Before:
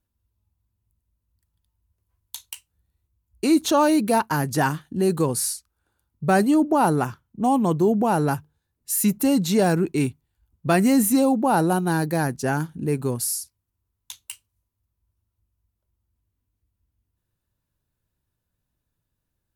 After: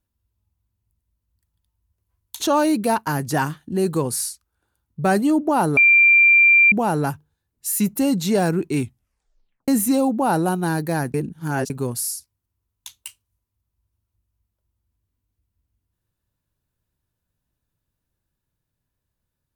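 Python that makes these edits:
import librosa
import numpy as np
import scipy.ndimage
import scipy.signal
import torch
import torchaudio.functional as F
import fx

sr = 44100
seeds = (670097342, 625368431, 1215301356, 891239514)

y = fx.edit(x, sr, fx.cut(start_s=2.4, length_s=1.24),
    fx.bleep(start_s=7.01, length_s=0.95, hz=2370.0, db=-9.5),
    fx.tape_stop(start_s=10.04, length_s=0.88),
    fx.reverse_span(start_s=12.38, length_s=0.56), tone=tone)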